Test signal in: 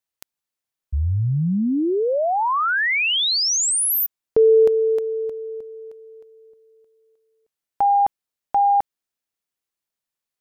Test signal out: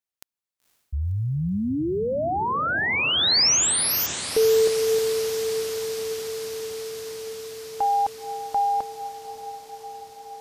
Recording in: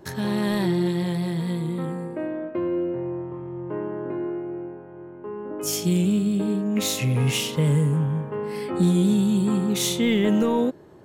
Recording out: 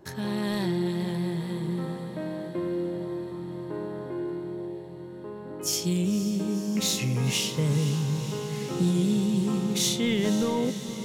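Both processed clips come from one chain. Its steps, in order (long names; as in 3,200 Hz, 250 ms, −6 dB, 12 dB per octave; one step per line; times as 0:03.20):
dynamic equaliser 5,100 Hz, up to +7 dB, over −41 dBFS, Q 1.1
on a send: feedback delay with all-pass diffusion 511 ms, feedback 78%, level −12 dB
on the sum: level −5 dB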